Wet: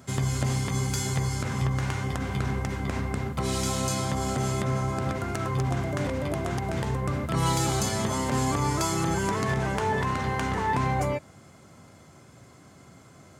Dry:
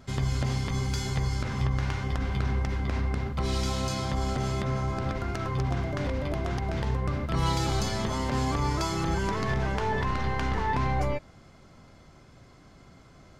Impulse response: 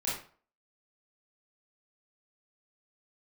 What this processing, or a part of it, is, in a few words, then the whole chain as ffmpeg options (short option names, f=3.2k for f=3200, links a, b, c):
budget condenser microphone: -af "highpass=f=82:w=0.5412,highpass=f=82:w=1.3066,highshelf=f=6.3k:t=q:w=1.5:g=7.5,volume=2.5dB"